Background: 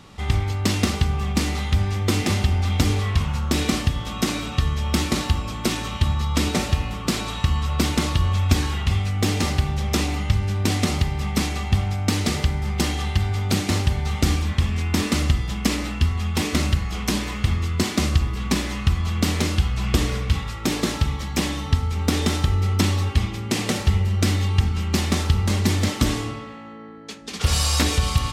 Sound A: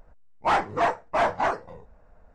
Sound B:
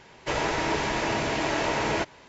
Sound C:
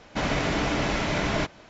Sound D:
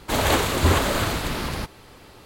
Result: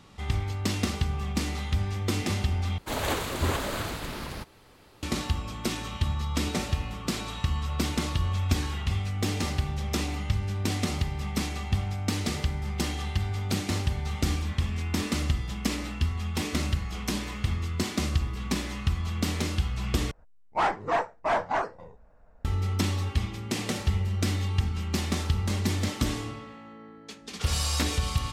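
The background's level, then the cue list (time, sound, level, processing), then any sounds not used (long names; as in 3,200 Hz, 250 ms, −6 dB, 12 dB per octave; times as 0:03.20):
background −7 dB
0:02.78: overwrite with D −8.5 dB
0:20.11: overwrite with A −3 dB
not used: B, C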